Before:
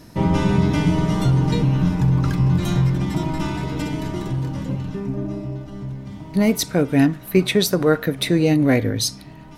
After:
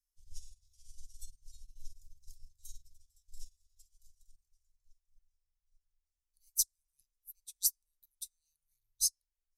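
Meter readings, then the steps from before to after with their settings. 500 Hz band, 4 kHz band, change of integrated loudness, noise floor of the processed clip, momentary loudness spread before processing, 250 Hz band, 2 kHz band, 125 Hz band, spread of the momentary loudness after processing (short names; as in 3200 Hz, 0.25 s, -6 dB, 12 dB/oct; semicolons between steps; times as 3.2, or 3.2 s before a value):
under -40 dB, -17.5 dB, -14.0 dB, under -85 dBFS, 10 LU, under -40 dB, under -40 dB, under -40 dB, 16 LU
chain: inverse Chebyshev band-stop 200–1300 Hz, stop band 80 dB; upward expander 2.5:1, over -46 dBFS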